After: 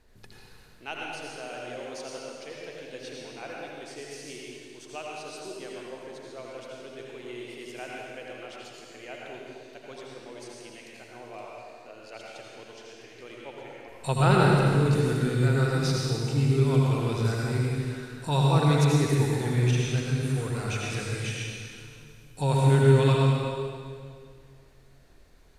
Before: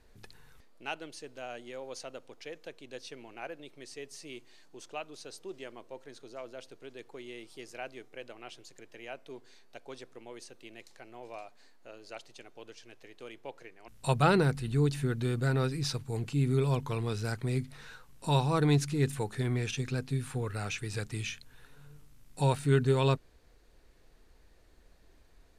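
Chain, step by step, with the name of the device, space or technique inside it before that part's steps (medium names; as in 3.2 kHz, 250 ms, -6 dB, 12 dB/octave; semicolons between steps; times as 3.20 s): stairwell (reverberation RT60 2.1 s, pre-delay 72 ms, DRR -3.5 dB)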